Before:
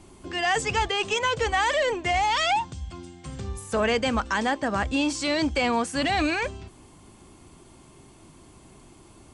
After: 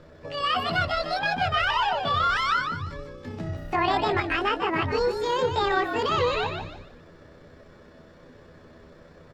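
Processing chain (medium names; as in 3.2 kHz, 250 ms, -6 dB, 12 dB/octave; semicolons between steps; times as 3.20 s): rotating-head pitch shifter +8.5 st; distance through air 160 m; frequency-shifting echo 148 ms, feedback 31%, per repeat -62 Hz, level -6.5 dB; dynamic bell 6.1 kHz, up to -6 dB, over -46 dBFS, Q 0.93; trim +2 dB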